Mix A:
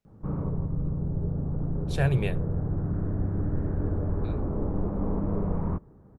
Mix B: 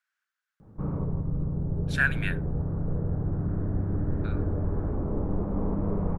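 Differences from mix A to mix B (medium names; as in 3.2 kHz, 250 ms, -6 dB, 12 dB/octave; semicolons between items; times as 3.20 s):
speech: add resonant high-pass 1.5 kHz, resonance Q 7.2; background: entry +0.55 s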